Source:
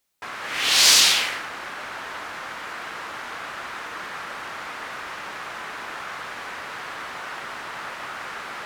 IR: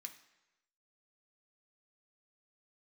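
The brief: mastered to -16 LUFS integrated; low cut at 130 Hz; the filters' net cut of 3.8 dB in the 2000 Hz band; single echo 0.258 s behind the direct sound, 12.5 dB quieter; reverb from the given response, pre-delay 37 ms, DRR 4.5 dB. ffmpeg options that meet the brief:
-filter_complex "[0:a]highpass=130,equalizer=f=2k:t=o:g=-5,aecho=1:1:258:0.237,asplit=2[a][b];[1:a]atrim=start_sample=2205,adelay=37[c];[b][c]afir=irnorm=-1:irlink=0,volume=1dB[d];[a][d]amix=inputs=2:normalize=0"

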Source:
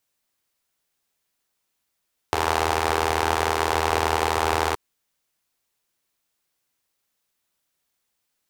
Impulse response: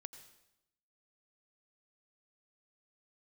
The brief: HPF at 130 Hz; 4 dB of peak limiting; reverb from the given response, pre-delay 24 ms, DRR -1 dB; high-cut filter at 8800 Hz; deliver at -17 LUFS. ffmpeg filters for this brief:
-filter_complex "[0:a]highpass=130,lowpass=8.8k,alimiter=limit=-7.5dB:level=0:latency=1,asplit=2[a][b];[1:a]atrim=start_sample=2205,adelay=24[c];[b][c]afir=irnorm=-1:irlink=0,volume=6.5dB[d];[a][d]amix=inputs=2:normalize=0,volume=4.5dB"

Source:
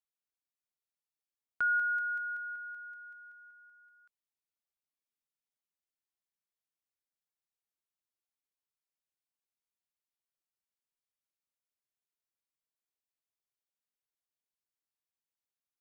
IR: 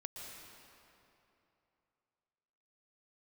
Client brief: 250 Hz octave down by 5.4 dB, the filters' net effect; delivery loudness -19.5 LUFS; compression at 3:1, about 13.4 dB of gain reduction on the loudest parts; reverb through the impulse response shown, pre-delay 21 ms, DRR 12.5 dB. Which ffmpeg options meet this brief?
-filter_complex "[0:a]equalizer=f=250:t=o:g=-7.5,acompressor=threshold=-46dB:ratio=3,asplit=2[a][b];[1:a]atrim=start_sample=2205,adelay=21[c];[b][c]afir=irnorm=-1:irlink=0,volume=-10.5dB[d];[a][d]amix=inputs=2:normalize=0,volume=26.5dB"

